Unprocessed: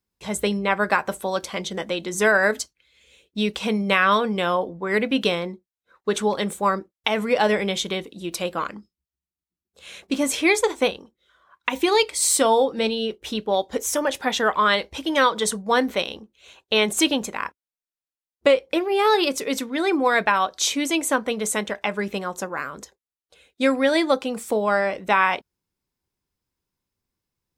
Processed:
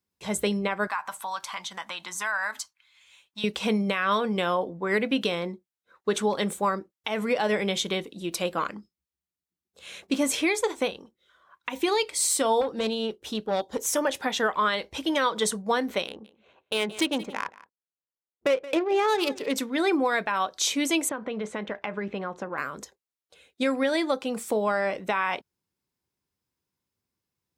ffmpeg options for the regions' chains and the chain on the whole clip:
ffmpeg -i in.wav -filter_complex "[0:a]asettb=1/sr,asplit=3[link_01][link_02][link_03];[link_01]atrim=end=0.874[link_04];[link_02]atrim=start=0.87:end=3.44,asetpts=PTS-STARTPTS,afade=type=in:duration=0.004:curve=qsin,afade=type=out:start_time=2.566:duration=0.004:curve=qsin,lowshelf=frequency=650:width_type=q:width=3:gain=-13.5,acompressor=threshold=-31dB:ratio=2:attack=3.2:release=140:knee=1:detection=peak[link_05];[link_03]atrim=start=3.436[link_06];[link_04][link_05]acrossfade=duration=0.004:curve1=hsin:curve2=qsin[link_07];[link_07][link_06]acrossfade=duration=0.004:curve1=qsin:curve2=hsin,asettb=1/sr,asplit=3[link_08][link_09][link_10];[link_08]atrim=end=12.614[link_11];[link_09]atrim=start=12.61:end=13.86,asetpts=PTS-STARTPTS,afade=type=in:duration=0.004:curve=qsin,afade=type=out:start_time=1.246:duration=0.004:curve=qsin,equalizer=frequency=2200:width=2.3:gain=-6,aeval=exprs='(tanh(7.08*val(0)+0.5)-tanh(0.5))/7.08':channel_layout=same[link_12];[link_10]atrim=start=13.856[link_13];[link_11][link_12]acrossfade=duration=0.004:curve1=hsin:curve2=qsin[link_14];[link_14][link_13]acrossfade=duration=0.004:curve1=qsin:curve2=hsin,asettb=1/sr,asplit=3[link_15][link_16][link_17];[link_15]atrim=end=16.074[link_18];[link_16]atrim=start=16.07:end=19.56,asetpts=PTS-STARTPTS,afade=type=in:duration=0.004:curve=qsin,afade=type=out:start_time=3.486:duration=0.004:curve=qsin,lowshelf=frequency=78:gain=-11,adynamicsmooth=sensitivity=2:basefreq=1300,aecho=1:1:174:0.0944,atrim=end_sample=153909[link_19];[link_17]atrim=start=19.556[link_20];[link_18][link_19]acrossfade=duration=0.004:curve1=hsin:curve2=qsin[link_21];[link_21][link_20]acrossfade=duration=0.004:curve1=qsin:curve2=hsin,asettb=1/sr,asplit=3[link_22][link_23][link_24];[link_22]atrim=end=21.094[link_25];[link_23]atrim=start=21.09:end=22.58,asetpts=PTS-STARTPTS,afade=type=in:duration=0.004:curve=qsin,afade=type=out:start_time=1.486:duration=0.004:curve=qsin,lowpass=2500,acompressor=threshold=-25dB:ratio=12:attack=3.2:release=140:knee=1:detection=peak[link_26];[link_24]atrim=start=22.576[link_27];[link_25][link_26]acrossfade=duration=0.004:curve1=hsin:curve2=qsin[link_28];[link_28][link_27]acrossfade=duration=0.004:curve1=qsin:curve2=hsin,highpass=76,alimiter=limit=-13dB:level=0:latency=1:release=217,volume=-1.5dB" out.wav

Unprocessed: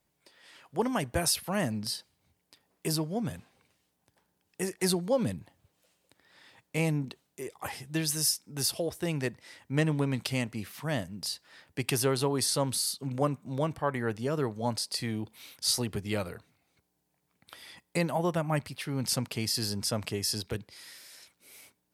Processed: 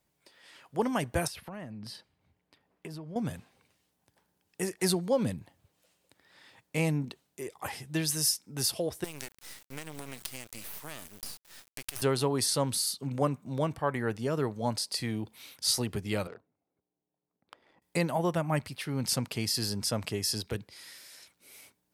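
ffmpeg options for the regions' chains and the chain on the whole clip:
ffmpeg -i in.wav -filter_complex "[0:a]asettb=1/sr,asplit=3[link_01][link_02][link_03];[link_01]atrim=end=1.274[link_04];[link_02]atrim=start=1.27:end=3.16,asetpts=PTS-STARTPTS,afade=type=in:duration=0.004:curve=qsin,afade=type=out:start_time=1.886:duration=0.004:curve=qsin,bass=frequency=250:gain=1,treble=frequency=4000:gain=-13,acompressor=threshold=-38dB:ratio=12:attack=3.2:release=140:knee=1:detection=peak[link_05];[link_03]atrim=start=3.156[link_06];[link_04][link_05]acrossfade=duration=0.004:curve1=hsin:curve2=qsin[link_07];[link_07][link_06]acrossfade=duration=0.004:curve1=qsin:curve2=hsin,asettb=1/sr,asplit=3[link_08][link_09][link_10];[link_08]atrim=end=9.044[link_11];[link_09]atrim=start=9.04:end=12.02,asetpts=PTS-STARTPTS,afade=type=in:duration=0.004:curve=qsin,afade=type=out:start_time=2.976:duration=0.004:curve=qsin,aemphasis=mode=production:type=riaa,acompressor=threshold=-35dB:ratio=6:attack=3.2:release=140:knee=1:detection=peak,acrusher=bits=5:dc=4:mix=0:aa=0.000001[link_12];[link_10]atrim=start=12.016[link_13];[link_11][link_12]acrossfade=duration=0.004:curve1=hsin:curve2=qsin[link_14];[link_14][link_13]acrossfade=duration=0.004:curve1=qsin:curve2=hsin,asettb=1/sr,asplit=3[link_15][link_16][link_17];[link_15]atrim=end=16.274[link_18];[link_16]atrim=start=16.27:end=17.82,asetpts=PTS-STARTPTS,afade=type=in:duration=0.004:curve=qsin,afade=type=out:start_time=1.546:duration=0.004:curve=qsin,highpass=frequency=150:poles=1,bass=frequency=250:gain=-10,treble=frequency=4000:gain=6,adynamicsmooth=sensitivity=6:basefreq=540[link_19];[link_17]atrim=start=17.816[link_20];[link_18][link_19]acrossfade=duration=0.004:curve1=hsin:curve2=qsin[link_21];[link_21][link_20]acrossfade=duration=0.004:curve1=qsin:curve2=hsin" out.wav

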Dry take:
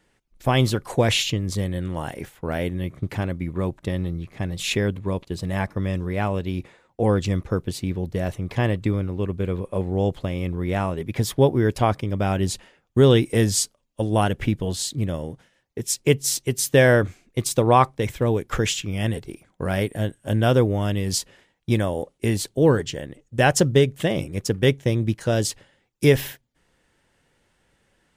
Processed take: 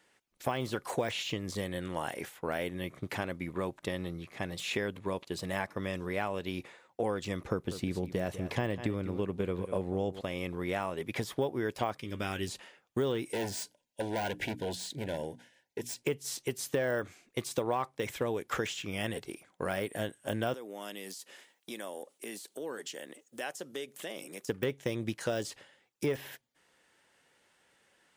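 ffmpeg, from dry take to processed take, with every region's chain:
ffmpeg -i in.wav -filter_complex "[0:a]asettb=1/sr,asplit=3[link_01][link_02][link_03];[link_01]atrim=end=7.414[link_04];[link_02]atrim=start=7.41:end=10.21,asetpts=PTS-STARTPTS,afade=type=in:duration=0.004:curve=qsin,afade=type=out:start_time=2.796:duration=0.004:curve=qsin,lowshelf=frequency=440:gain=7.5,aecho=1:1:196:0.178,atrim=end_sample=123480[link_05];[link_03]atrim=start=10.206[link_06];[link_04][link_05]acrossfade=duration=0.004:curve1=hsin:curve2=qsin[link_07];[link_07][link_06]acrossfade=duration=0.004:curve1=qsin:curve2=hsin,asettb=1/sr,asplit=3[link_08][link_09][link_10];[link_08]atrim=end=11.974[link_11];[link_09]atrim=start=11.97:end=12.48,asetpts=PTS-STARTPTS,afade=type=in:duration=0.004:curve=qsin,afade=type=out:start_time=0.506:duration=0.004:curve=qsin,equalizer=frequency=700:width=0.95:gain=-12,asplit=2[link_12][link_13];[link_13]adelay=13,volume=-11dB[link_14];[link_12][link_14]amix=inputs=2:normalize=0,atrim=end_sample=22491,bandreject=frequency=185.5:width_type=h:width=4,bandreject=frequency=371:width_type=h:width=4,bandreject=frequency=556.5:width_type=h:width=4,bandreject=frequency=742:width_type=h:width=4,bandreject=frequency=927.5:width_type=h:width=4,bandreject=frequency=1113:width_type=h:width=4,bandreject=frequency=1298.5:width_type=h:width=4,bandreject=frequency=1484:width_type=h:width=4,bandreject=frequency=1669.5:width_type=h:width=4,bandreject=frequency=1855:width_type=h:width=4,bandreject=frequency=2040.5:width_type=h:width=4,bandreject=frequency=2226:width_type=h:width=4,bandreject=frequency=2411.5:width_type=h:width=4,bandreject=frequency=2597:width_type=h:width=4,bandreject=frequency=2782.5:width_type=h:width=4,bandreject=frequency=2968:width_type=h:width=4,bandreject=frequency=3153.5:width_type=h:width=4,bandreject=frequency=3339:width_type=h:width=4,bandreject=frequency=3524.5:width_type=h:width=4,bandreject=frequency=3710:width_type=h:width=4,bandreject=frequency=3895.5:width_type=h:width=4,bandreject=frequency=4081:width_type=h:width=4,bandreject=frequency=4266.5:width_type=h:width=4,bandreject=frequency=4452:width_type=h:width=4,bandreject=frequency=4637.5:width_type=h:width=4[link_15];[link_10]atrim=start=12.476[link_16];[link_11][link_15]acrossfade=duration=0.004:curve1=hsin:curve2=qsin[link_17];[link_17][link_16]acrossfade=duration=0.004:curve1=qsin:curve2=hsin,asettb=1/sr,asplit=3[link_18][link_19][link_20];[link_18]atrim=end=13.314[link_21];[link_19]atrim=start=13.31:end=16.03,asetpts=PTS-STARTPTS,afade=type=in:duration=0.004:curve=qsin,afade=type=out:start_time=2.716:duration=0.004:curve=qsin,bandreject=frequency=60:width_type=h:width=6,bandreject=frequency=120:width_type=h:width=6,bandreject=frequency=180:width_type=h:width=6,bandreject=frequency=240:width_type=h:width=6,bandreject=frequency=300:width_type=h:width=6,volume=23dB,asoftclip=hard,volume=-23dB,asuperstop=centerf=1200:order=20:qfactor=3.2[link_22];[link_20]atrim=start=16.026[link_23];[link_21][link_22]acrossfade=duration=0.004:curve1=hsin:curve2=qsin[link_24];[link_24][link_23]acrossfade=duration=0.004:curve1=qsin:curve2=hsin,asettb=1/sr,asplit=3[link_25][link_26][link_27];[link_25]atrim=end=20.544[link_28];[link_26]atrim=start=20.54:end=24.49,asetpts=PTS-STARTPTS,afade=type=in:duration=0.004:curve=qsin,afade=type=out:start_time=3.946:duration=0.004:curve=qsin,highpass=frequency=200:width=0.5412,highpass=frequency=200:width=1.3066,highshelf=frequency=5800:gain=11.5,acompressor=threshold=-37dB:ratio=3:attack=3.2:release=140:knee=1:detection=peak[link_29];[link_27]atrim=start=24.486[link_30];[link_28][link_29]acrossfade=duration=0.004:curve1=hsin:curve2=qsin[link_31];[link_31][link_30]acrossfade=duration=0.004:curve1=qsin:curve2=hsin,deesser=0.85,highpass=frequency=570:poles=1,acompressor=threshold=-29dB:ratio=4" out.wav

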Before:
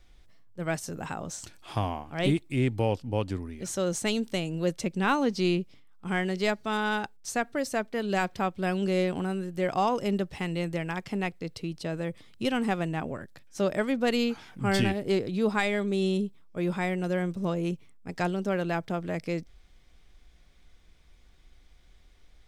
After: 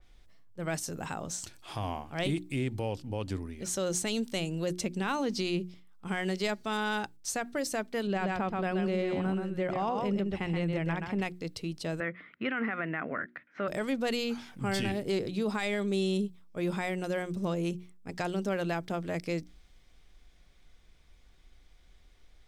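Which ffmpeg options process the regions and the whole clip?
ffmpeg -i in.wav -filter_complex "[0:a]asettb=1/sr,asplit=3[link_01][link_02][link_03];[link_01]atrim=end=8.074[link_04];[link_02]atrim=start=8.07:end=11.22,asetpts=PTS-STARTPTS,afade=type=in:duration=0.004:curve=qsin,afade=type=out:start_time=3.146:duration=0.004:curve=qsin,bass=frequency=250:gain=3,treble=frequency=4000:gain=-15,aecho=1:1:128:0.531,atrim=end_sample=138915[link_05];[link_03]atrim=start=11.216[link_06];[link_04][link_05]acrossfade=duration=0.004:curve1=hsin:curve2=qsin[link_07];[link_07][link_06]acrossfade=duration=0.004:curve1=qsin:curve2=hsin,asettb=1/sr,asplit=3[link_08][link_09][link_10];[link_08]atrim=end=12.004[link_11];[link_09]atrim=start=12:end=13.68,asetpts=PTS-STARTPTS,afade=type=in:duration=0.004:curve=qsin,afade=type=out:start_time=1.676:duration=0.004:curve=qsin,acontrast=85,highpass=300,equalizer=frequency=380:width_type=q:width=4:gain=-7,equalizer=frequency=540:width_type=q:width=4:gain=-6,equalizer=frequency=860:width_type=q:width=4:gain=-10,equalizer=frequency=1400:width_type=q:width=4:gain=7,equalizer=frequency=2000:width_type=q:width=4:gain=9,lowpass=frequency=2200:width=0.5412,lowpass=frequency=2200:width=1.3066[link_12];[link_10]atrim=start=13.676[link_13];[link_11][link_12]acrossfade=duration=0.004:curve1=hsin:curve2=qsin[link_14];[link_14][link_13]acrossfade=duration=0.004:curve1=qsin:curve2=hsin,bandreject=frequency=60:width_type=h:width=6,bandreject=frequency=120:width_type=h:width=6,bandreject=frequency=180:width_type=h:width=6,bandreject=frequency=240:width_type=h:width=6,bandreject=frequency=300:width_type=h:width=6,bandreject=frequency=360:width_type=h:width=6,alimiter=limit=-21dB:level=0:latency=1,adynamicequalizer=threshold=0.00562:dfrequency=3100:dqfactor=0.7:tfrequency=3100:tqfactor=0.7:attack=5:release=100:ratio=0.375:range=2:mode=boostabove:tftype=highshelf,volume=-1.5dB" out.wav

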